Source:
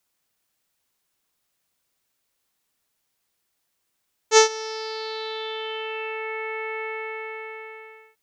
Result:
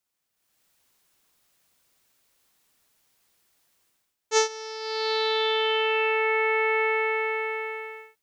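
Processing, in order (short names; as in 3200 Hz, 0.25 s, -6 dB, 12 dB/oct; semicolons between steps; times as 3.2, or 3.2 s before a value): AGC gain up to 14.5 dB; gain -7.5 dB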